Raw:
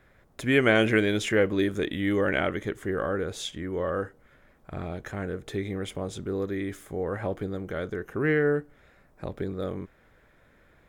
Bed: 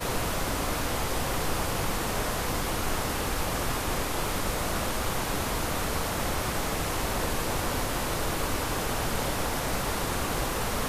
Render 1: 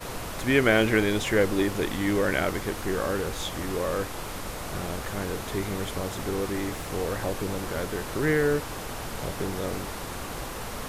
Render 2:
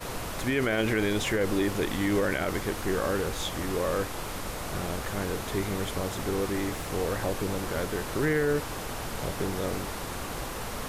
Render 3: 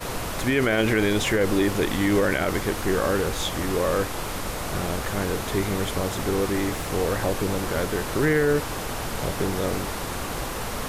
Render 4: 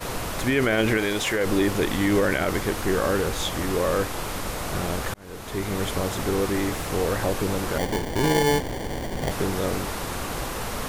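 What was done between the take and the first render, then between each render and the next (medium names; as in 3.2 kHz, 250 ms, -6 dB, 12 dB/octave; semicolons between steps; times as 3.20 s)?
add bed -6 dB
peak limiter -17 dBFS, peak gain reduction 8.5 dB
trim +5 dB
0.97–1.46 s: bass shelf 270 Hz -9.5 dB; 5.14–5.85 s: fade in; 7.78–9.31 s: sample-rate reducer 1.3 kHz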